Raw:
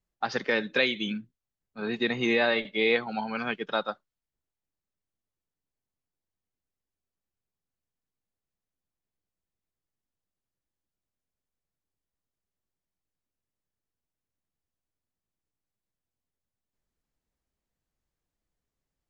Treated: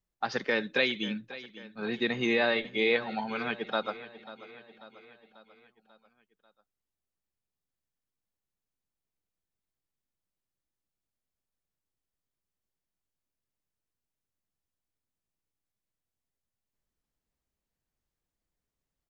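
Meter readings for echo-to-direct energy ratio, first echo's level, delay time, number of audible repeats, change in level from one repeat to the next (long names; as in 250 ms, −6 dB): −15.0 dB, −16.5 dB, 541 ms, 4, −5.0 dB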